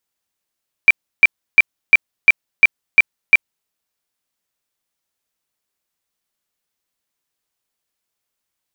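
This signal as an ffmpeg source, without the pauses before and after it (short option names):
-f lavfi -i "aevalsrc='0.708*sin(2*PI*2350*mod(t,0.35))*lt(mod(t,0.35),61/2350)':d=2.8:s=44100"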